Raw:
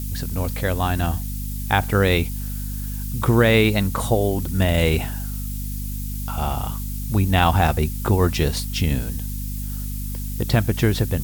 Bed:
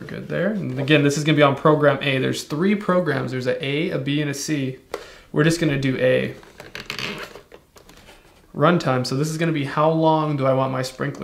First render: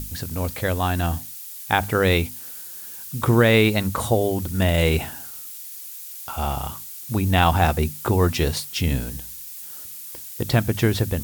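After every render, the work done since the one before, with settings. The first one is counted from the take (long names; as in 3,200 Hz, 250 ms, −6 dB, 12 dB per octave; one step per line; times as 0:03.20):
mains-hum notches 50/100/150/200/250 Hz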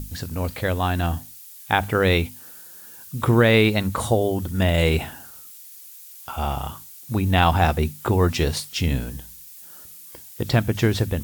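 noise reduction from a noise print 6 dB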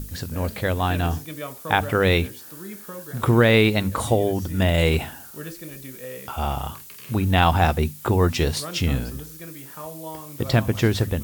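mix in bed −19 dB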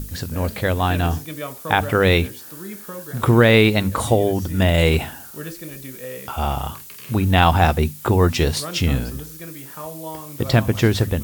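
level +3 dB
brickwall limiter −2 dBFS, peak gain reduction 2 dB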